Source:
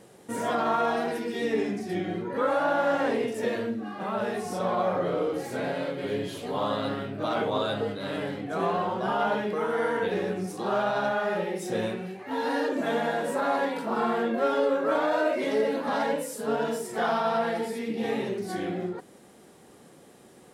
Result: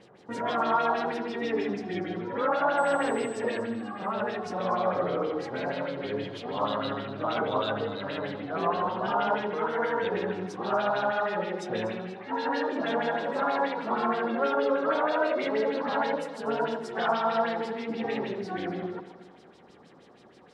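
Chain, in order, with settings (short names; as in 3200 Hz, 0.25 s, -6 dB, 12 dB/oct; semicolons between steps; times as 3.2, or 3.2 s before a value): LFO low-pass sine 6.3 Hz 990–5200 Hz; 2.77–3.38 whine 8000 Hz -46 dBFS; echo with dull and thin repeats by turns 0.121 s, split 1200 Hz, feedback 66%, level -10.5 dB; gain -3 dB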